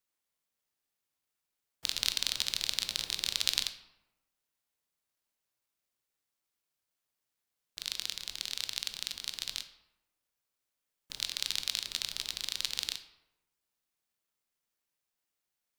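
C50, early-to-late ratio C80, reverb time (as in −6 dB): 11.5 dB, 13.5 dB, 1.0 s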